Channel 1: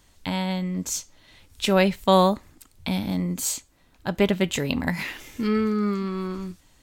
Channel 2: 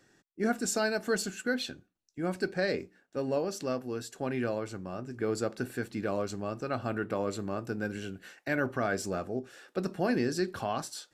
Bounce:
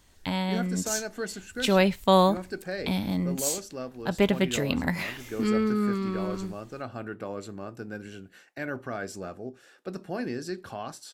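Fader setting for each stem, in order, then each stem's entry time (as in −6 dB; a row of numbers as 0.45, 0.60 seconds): −2.0, −4.0 decibels; 0.00, 0.10 seconds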